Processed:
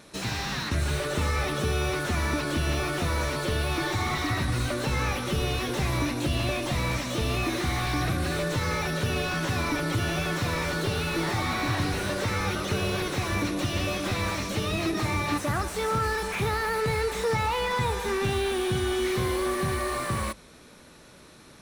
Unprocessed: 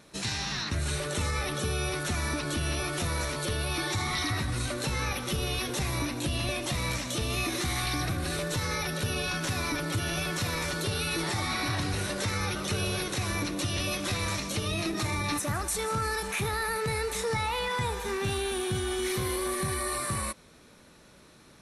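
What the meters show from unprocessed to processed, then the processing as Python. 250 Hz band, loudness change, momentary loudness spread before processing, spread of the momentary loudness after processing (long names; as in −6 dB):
+4.0 dB, +2.5 dB, 2 LU, 2 LU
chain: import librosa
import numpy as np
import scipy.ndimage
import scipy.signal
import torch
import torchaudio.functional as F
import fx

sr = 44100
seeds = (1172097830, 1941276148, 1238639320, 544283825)

y = fx.hum_notches(x, sr, base_hz=50, count=4)
y = fx.slew_limit(y, sr, full_power_hz=48.0)
y = F.gain(torch.from_numpy(y), 4.5).numpy()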